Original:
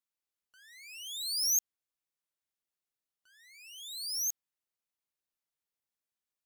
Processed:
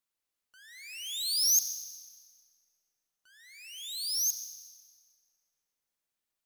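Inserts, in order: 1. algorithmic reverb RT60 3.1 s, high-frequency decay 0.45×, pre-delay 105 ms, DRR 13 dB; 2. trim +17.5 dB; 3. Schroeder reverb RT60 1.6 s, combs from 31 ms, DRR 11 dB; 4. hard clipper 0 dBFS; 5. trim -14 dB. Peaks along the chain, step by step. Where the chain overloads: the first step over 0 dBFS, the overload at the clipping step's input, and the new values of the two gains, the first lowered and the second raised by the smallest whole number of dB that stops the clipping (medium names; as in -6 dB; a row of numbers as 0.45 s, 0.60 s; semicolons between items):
-20.5 dBFS, -3.0 dBFS, -1.5 dBFS, -1.5 dBFS, -15.5 dBFS; nothing clips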